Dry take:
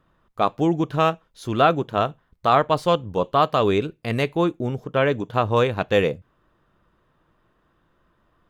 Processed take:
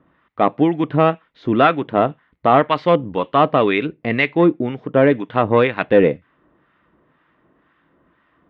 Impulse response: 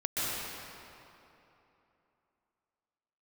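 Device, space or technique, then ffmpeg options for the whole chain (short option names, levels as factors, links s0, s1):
guitar amplifier with harmonic tremolo: -filter_complex "[0:a]acrossover=split=1000[s0][s1];[s0]aeval=exprs='val(0)*(1-0.7/2+0.7/2*cos(2*PI*2*n/s))':c=same[s2];[s1]aeval=exprs='val(0)*(1-0.7/2-0.7/2*cos(2*PI*2*n/s))':c=same[s3];[s2][s3]amix=inputs=2:normalize=0,asoftclip=type=tanh:threshold=0.282,highpass=81,equalizer=f=100:t=q:w=4:g=-10,equalizer=f=280:t=q:w=4:g=7,equalizer=f=2000:t=q:w=4:g=8,lowpass=f=3400:w=0.5412,lowpass=f=3400:w=1.3066,volume=2.51"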